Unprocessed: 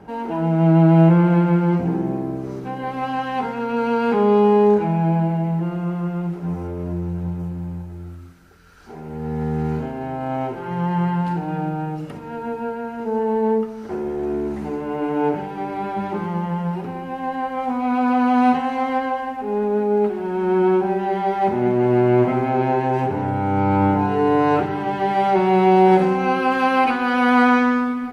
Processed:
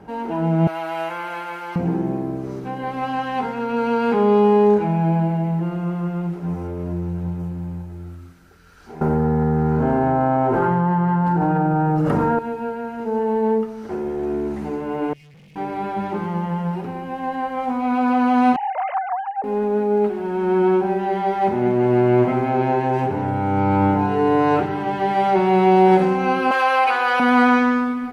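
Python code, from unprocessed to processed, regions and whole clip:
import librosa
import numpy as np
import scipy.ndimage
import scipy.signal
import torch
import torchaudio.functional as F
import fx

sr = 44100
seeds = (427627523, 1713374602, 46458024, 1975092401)

y = fx.chain(x, sr, fx.highpass(hz=810.0, slope=12),
    fx.tilt_eq(slope=2.0), at=(0.67, 1.76))
y = fx.chain(y, sr, fx.high_shelf_res(hz=1900.0, db=-9.0, q=1.5),
    fx.env_flatten(amount_pct=100), at=(9.01, 12.39))
y = fx.chain(y, sr, fx.brickwall_bandstop(low_hz=200.0, high_hz=2000.0),
    fx.tube_stage(drive_db=46.0, bias=0.5), at=(15.13, 15.56))
y = fx.chain(y, sr, fx.sine_speech(),
    fx.highpass(hz=280.0, slope=12),
    fx.high_shelf(hz=2300.0, db=-10.0), at=(18.56, 19.44))
y = fx.chain(y, sr, fx.highpass(hz=480.0, slope=24),
    fx.env_flatten(amount_pct=50), at=(26.51, 27.2))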